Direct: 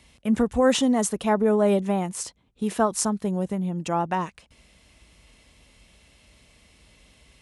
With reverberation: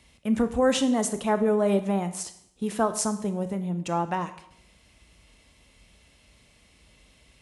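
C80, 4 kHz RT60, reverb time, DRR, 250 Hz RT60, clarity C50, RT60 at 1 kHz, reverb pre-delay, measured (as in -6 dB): 15.5 dB, 0.65 s, 0.75 s, 9.5 dB, 0.75 s, 13.0 dB, 0.70 s, 15 ms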